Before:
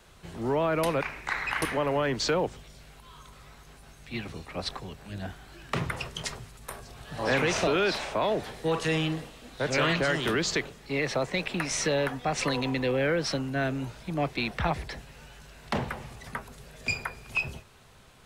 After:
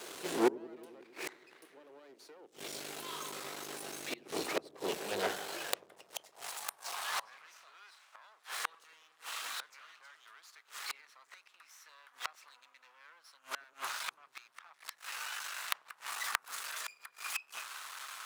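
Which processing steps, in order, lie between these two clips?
high-shelf EQ 3,700 Hz +8 dB
mains-hum notches 60/120/180/240 Hz
in parallel at +2 dB: downward compressor 16 to 1, threshold −34 dBFS, peak gain reduction 14.5 dB
on the sum: gate with flip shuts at −19 dBFS, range −36 dB
harmonic generator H 4 −15 dB, 6 −8 dB, 8 −8 dB, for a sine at −11 dBFS
half-wave rectification
high-pass filter sweep 350 Hz → 1,200 Hz, 0:04.73–0:07.47
on a send: delay with a low-pass on its return 93 ms, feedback 74%, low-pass 430 Hz, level −16 dB
on the sum: level +5.5 dB

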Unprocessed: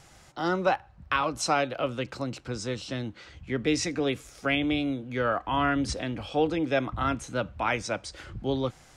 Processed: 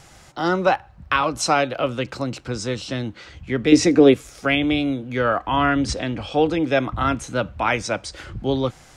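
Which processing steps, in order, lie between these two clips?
0:03.72–0:04.14: parametric band 350 Hz +10.5 dB 2 octaves
0:05.52–0:06.39: low-pass filter 9,200 Hz 24 dB per octave
level +6.5 dB

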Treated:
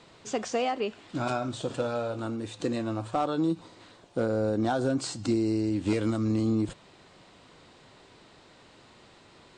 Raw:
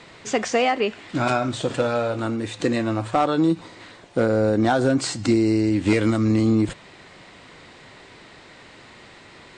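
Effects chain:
parametric band 2,000 Hz −7.5 dB 0.62 octaves
level −7.5 dB

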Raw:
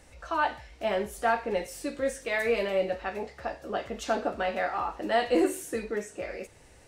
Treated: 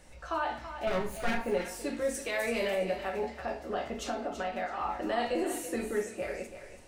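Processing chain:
0:00.87–0:01.38: lower of the sound and its delayed copy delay 0.46 ms
0:02.14–0:02.77: high-shelf EQ 5,600 Hz +10 dB
0:03.93–0:04.81: downward compressor, threshold −31 dBFS, peak gain reduction 9.5 dB
brickwall limiter −22 dBFS, peak gain reduction 9 dB
feedback echo with a high-pass in the loop 331 ms, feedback 26%, level −10 dB
rectangular room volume 210 cubic metres, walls furnished, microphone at 1 metre
level −2 dB

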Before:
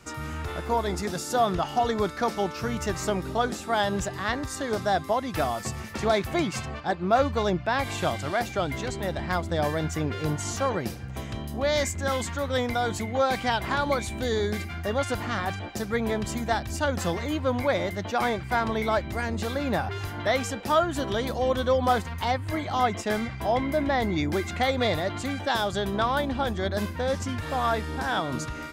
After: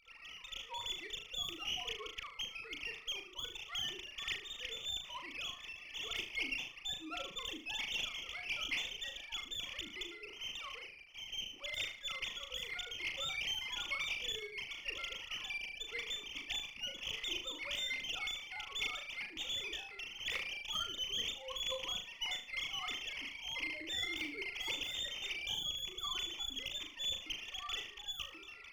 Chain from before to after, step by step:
three sine waves on the formant tracks
inverse Chebyshev high-pass filter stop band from 1,700 Hz, stop band 50 dB
sine wavefolder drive 16 dB, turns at −38 dBFS
high-frequency loss of the air 480 metres
on a send: flutter between parallel walls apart 6.5 metres, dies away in 0.38 s
on the sum: windowed peak hold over 3 samples
level +13.5 dB

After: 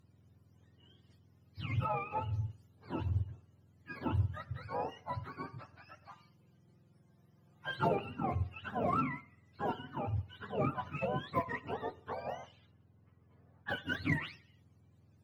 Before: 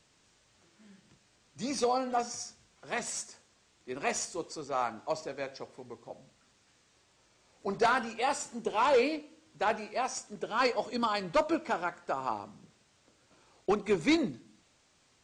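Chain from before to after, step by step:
frequency axis turned over on the octave scale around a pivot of 790 Hz
harmonic generator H 8 −36 dB, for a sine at −13.5 dBFS
0:06.11–0:07.92: comb filter 5.7 ms, depth 57%
0:12.23–0:13.74: low-pass that shuts in the quiet parts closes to 2,000 Hz, open at −32 dBFS
level −4.5 dB

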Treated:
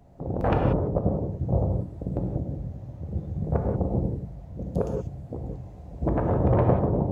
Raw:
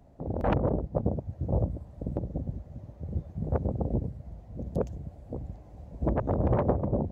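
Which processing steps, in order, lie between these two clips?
reverb whose tail is shaped and stops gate 210 ms flat, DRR 1.5 dB
level +2 dB

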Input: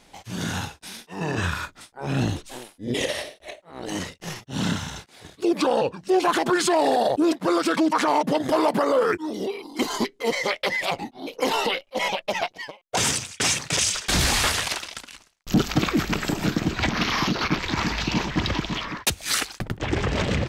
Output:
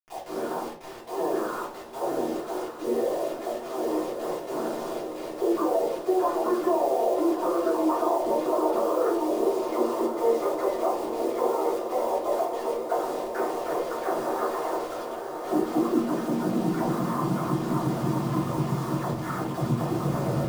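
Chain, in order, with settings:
every frequency bin delayed by itself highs early, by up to 263 ms
inverse Chebyshev low-pass filter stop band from 3,600 Hz, stop band 60 dB
harmonic and percussive parts rebalanced harmonic −9 dB
low-shelf EQ 370 Hz −9 dB
downward compressor 4 to 1, threshold −40 dBFS, peak gain reduction 15 dB
high-pass filter sweep 400 Hz → 130 Hz, 0:15.13–0:17.44
bit reduction 9 bits
feedback delay with all-pass diffusion 1,088 ms, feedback 70%, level −8 dB
convolution reverb RT60 0.45 s, pre-delay 3 ms, DRR −5 dB
level +5.5 dB

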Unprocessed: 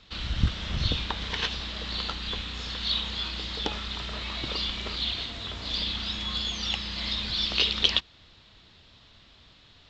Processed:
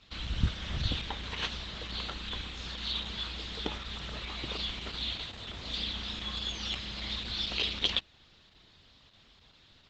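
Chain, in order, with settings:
dynamic equaliser 4,900 Hz, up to −5 dB, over −47 dBFS, Q 3.1
level −4 dB
Opus 10 kbit/s 48,000 Hz

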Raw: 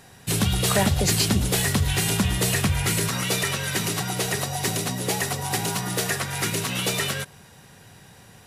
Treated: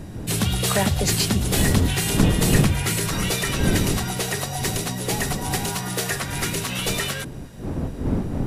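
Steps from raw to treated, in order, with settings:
wind on the microphone 220 Hz −26 dBFS

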